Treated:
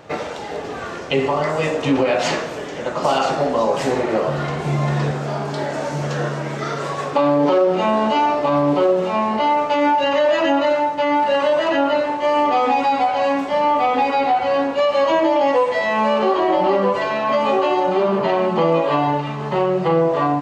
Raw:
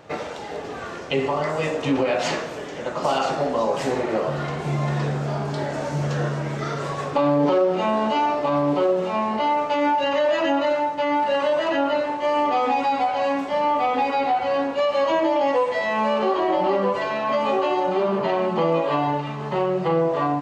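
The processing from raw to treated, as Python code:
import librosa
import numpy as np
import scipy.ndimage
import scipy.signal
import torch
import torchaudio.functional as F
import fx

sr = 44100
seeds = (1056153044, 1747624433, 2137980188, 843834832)

y = fx.low_shelf(x, sr, hz=110.0, db=-12.0, at=(5.11, 7.67))
y = y * 10.0 ** (4.0 / 20.0)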